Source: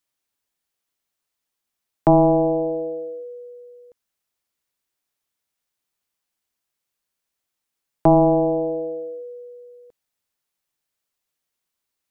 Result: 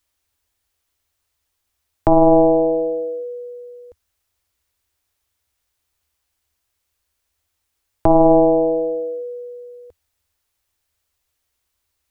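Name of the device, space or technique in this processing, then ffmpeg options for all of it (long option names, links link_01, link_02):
car stereo with a boomy subwoofer: -af "lowshelf=frequency=110:width_type=q:width=3:gain=10,alimiter=limit=-12dB:level=0:latency=1:release=11,volume=7dB"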